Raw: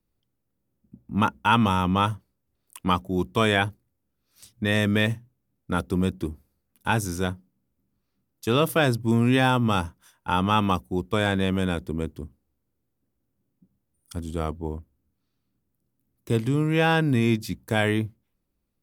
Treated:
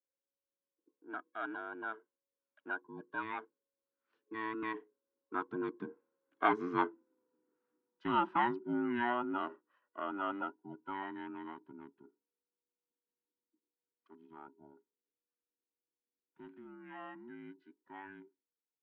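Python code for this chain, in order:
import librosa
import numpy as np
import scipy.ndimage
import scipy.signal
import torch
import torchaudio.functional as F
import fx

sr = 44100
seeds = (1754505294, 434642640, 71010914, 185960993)

y = fx.band_invert(x, sr, width_hz=500)
y = fx.doppler_pass(y, sr, speed_mps=23, closest_m=15.0, pass_at_s=6.99)
y = fx.cabinet(y, sr, low_hz=260.0, low_slope=12, high_hz=2500.0, hz=(280.0, 440.0, 960.0, 1500.0, 2200.0), db=(4, -6, 6, 9, -4))
y = F.gain(torch.from_numpy(y), -4.0).numpy()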